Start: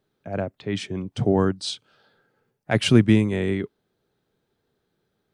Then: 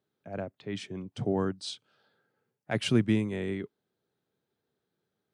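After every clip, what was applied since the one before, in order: high-pass 94 Hz; trim -8.5 dB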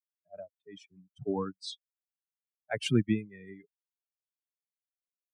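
expander on every frequency bin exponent 3; trim +1.5 dB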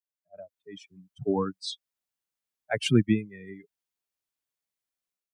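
level rider gain up to 10.5 dB; trim -5 dB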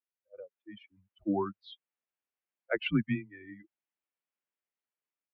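mistuned SSB -90 Hz 290–3000 Hz; trim -2 dB

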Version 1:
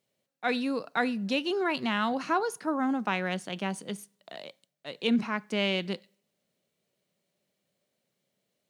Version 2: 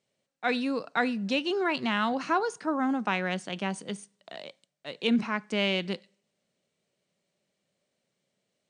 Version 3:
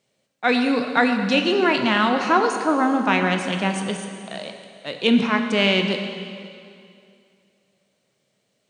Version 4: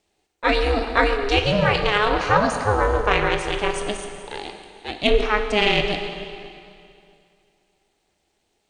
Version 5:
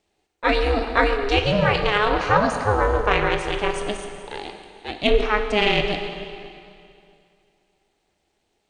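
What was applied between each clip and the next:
Chebyshev low-pass 9.3 kHz, order 8; trim +1.5 dB
plate-style reverb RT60 2.4 s, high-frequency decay 0.95×, DRR 4.5 dB; trim +8 dB
ring modulator 210 Hz; Chebyshev shaper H 4 -31 dB, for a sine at -4 dBFS; trim +3 dB
treble shelf 4.8 kHz -5 dB

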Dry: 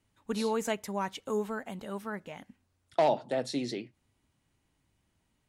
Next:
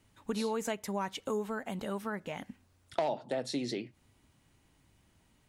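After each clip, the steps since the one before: compression 2.5:1, threshold -43 dBFS, peak gain reduction 15 dB; trim +7.5 dB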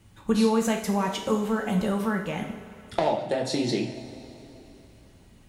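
bass shelf 190 Hz +7.5 dB; two-slope reverb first 0.55 s, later 3.4 s, from -15 dB, DRR 1.5 dB; trim +6 dB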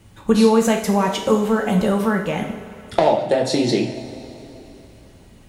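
peaking EQ 520 Hz +3 dB 1.1 oct; trim +6.5 dB

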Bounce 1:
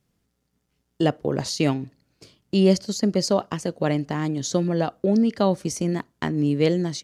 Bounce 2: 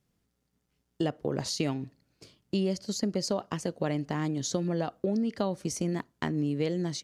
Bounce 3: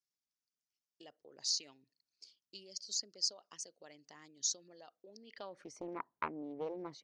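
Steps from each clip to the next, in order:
compression 6:1, threshold -21 dBFS, peak gain reduction 9 dB; trim -4 dB
resonances exaggerated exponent 1.5; band-pass sweep 5.6 kHz -> 980 Hz, 5.12–5.82 s; loudspeaker Doppler distortion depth 0.36 ms; trim +2.5 dB

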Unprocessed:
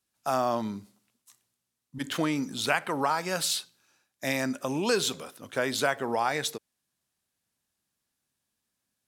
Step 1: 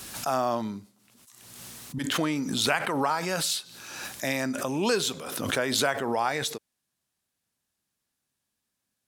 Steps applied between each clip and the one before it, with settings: swell ahead of each attack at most 37 dB/s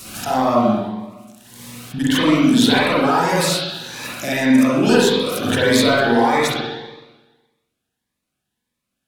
waveshaping leveller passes 1; spring tank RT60 1.2 s, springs 42/46 ms, chirp 25 ms, DRR -7.5 dB; Shepard-style phaser rising 1.7 Hz; trim +1.5 dB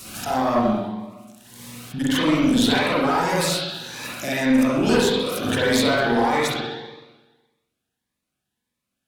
single-diode clipper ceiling -11.5 dBFS; trim -2.5 dB

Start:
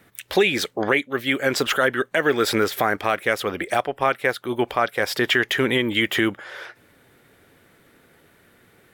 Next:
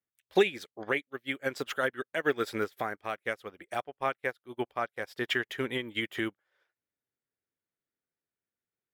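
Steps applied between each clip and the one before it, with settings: upward expansion 2.5:1, over -39 dBFS; trim -4 dB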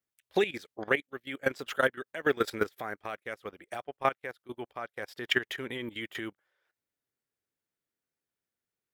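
level held to a coarse grid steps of 14 dB; trim +5.5 dB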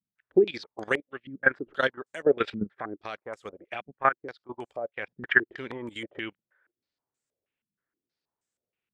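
step-sequenced low-pass 6.3 Hz 200–7600 Hz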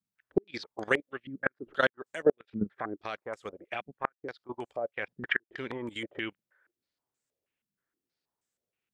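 inverted gate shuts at -11 dBFS, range -41 dB

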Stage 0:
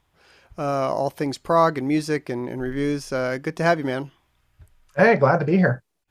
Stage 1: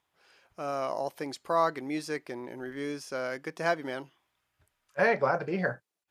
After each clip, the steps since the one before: high-pass 440 Hz 6 dB/octave; trim -7 dB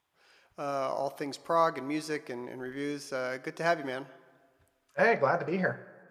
plate-style reverb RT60 1.7 s, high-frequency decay 0.55×, DRR 16.5 dB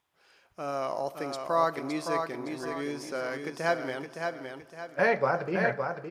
feedback delay 564 ms, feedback 39%, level -5.5 dB

